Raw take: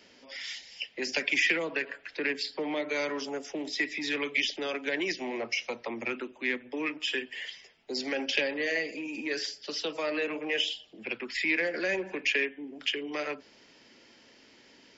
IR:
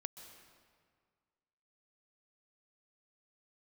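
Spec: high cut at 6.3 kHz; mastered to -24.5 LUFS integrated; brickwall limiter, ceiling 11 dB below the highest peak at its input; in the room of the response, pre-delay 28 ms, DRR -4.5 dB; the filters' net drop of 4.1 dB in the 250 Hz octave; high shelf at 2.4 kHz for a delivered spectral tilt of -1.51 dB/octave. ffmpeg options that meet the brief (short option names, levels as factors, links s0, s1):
-filter_complex "[0:a]lowpass=6300,equalizer=f=250:t=o:g=-5.5,highshelf=f=2400:g=4,alimiter=limit=0.0891:level=0:latency=1,asplit=2[s0][s1];[1:a]atrim=start_sample=2205,adelay=28[s2];[s1][s2]afir=irnorm=-1:irlink=0,volume=2.37[s3];[s0][s3]amix=inputs=2:normalize=0,volume=1.41"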